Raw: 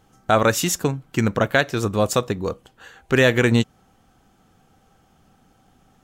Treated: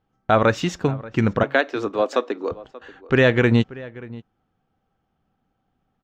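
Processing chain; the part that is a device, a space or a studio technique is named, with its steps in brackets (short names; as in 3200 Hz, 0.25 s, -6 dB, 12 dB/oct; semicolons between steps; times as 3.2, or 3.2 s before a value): 1.43–2.51 elliptic high-pass 260 Hz, stop band 50 dB; gate -47 dBFS, range -15 dB; shout across a valley (air absorption 200 m; outdoor echo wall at 100 m, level -19 dB); gain +1 dB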